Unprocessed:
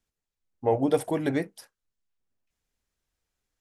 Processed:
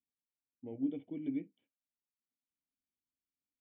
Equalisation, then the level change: vocal tract filter i; HPF 120 Hz 6 dB/oct; air absorption 79 m; -5.5 dB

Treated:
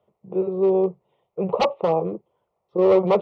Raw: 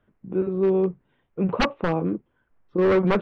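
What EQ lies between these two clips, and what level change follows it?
HPF 310 Hz 12 dB/oct; tilt -2.5 dB/oct; fixed phaser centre 660 Hz, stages 4; +6.0 dB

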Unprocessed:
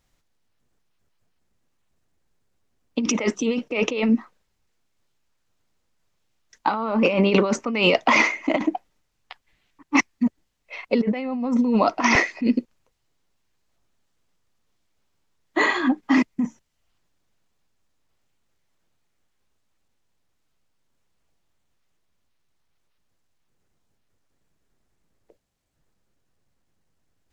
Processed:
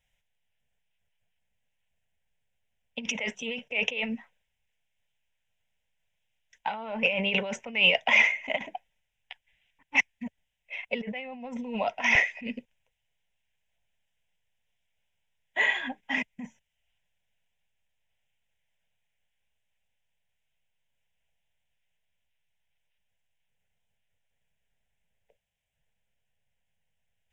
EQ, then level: bell 3300 Hz +13.5 dB 1.3 oct; fixed phaser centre 1200 Hz, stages 6; -8.0 dB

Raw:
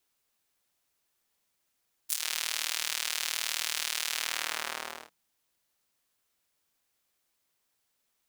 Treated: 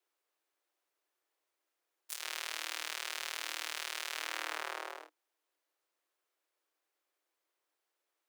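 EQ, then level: Chebyshev high-pass 300 Hz, order 8; high shelf 2500 Hz -11 dB; 0.0 dB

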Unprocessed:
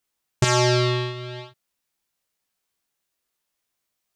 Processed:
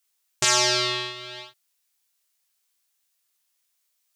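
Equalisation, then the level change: HPF 850 Hz 6 dB/oct; high shelf 2900 Hz +8.5 dB; -1.0 dB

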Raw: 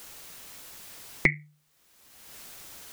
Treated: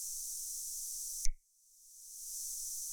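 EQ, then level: inverse Chebyshev band-stop 110–1500 Hz, stop band 80 dB; air absorption 60 m; bell 5900 Hz +11 dB 0.32 oct; +16.5 dB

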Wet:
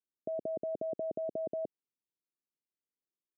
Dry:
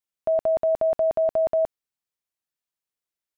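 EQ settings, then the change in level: HPF 220 Hz 12 dB/oct; inverse Chebyshev low-pass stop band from 1400 Hz, stop band 60 dB; +2.0 dB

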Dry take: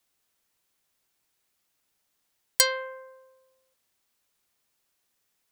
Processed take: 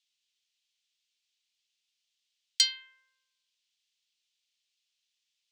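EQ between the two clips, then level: ladder high-pass 2500 Hz, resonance 40%; air absorption 160 m; bell 8700 Hz +11.5 dB 2.2 oct; +4.0 dB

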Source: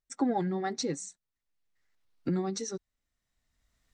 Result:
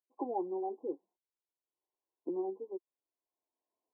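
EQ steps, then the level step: resonant high-pass 350 Hz, resonance Q 4.2; brick-wall FIR low-pass 1100 Hz; differentiator; +12.5 dB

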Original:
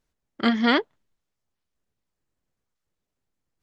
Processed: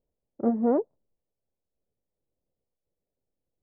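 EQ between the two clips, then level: inverse Chebyshev low-pass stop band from 4600 Hz, stop band 80 dB; bell 510 Hz +8 dB 0.71 oct; -4.0 dB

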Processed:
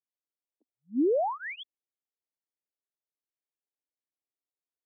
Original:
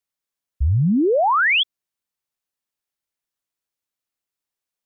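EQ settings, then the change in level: running mean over 33 samples; steep high-pass 260 Hz 72 dB/oct; -5.5 dB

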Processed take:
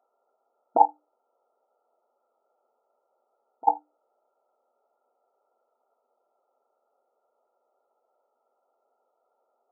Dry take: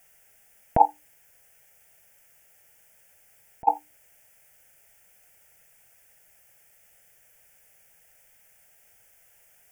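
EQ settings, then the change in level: brick-wall FIR band-pass 240–1400 Hz; 0.0 dB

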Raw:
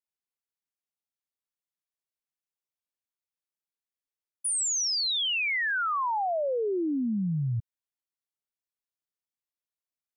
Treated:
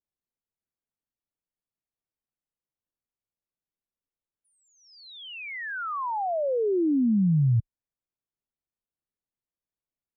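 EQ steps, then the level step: air absorption 370 m; tilt -4 dB/oct; low shelf 110 Hz -10.5 dB; 0.0 dB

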